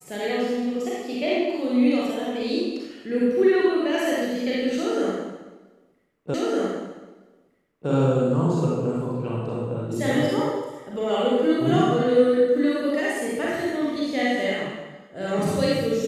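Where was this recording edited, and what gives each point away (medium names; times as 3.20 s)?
6.34 s: repeat of the last 1.56 s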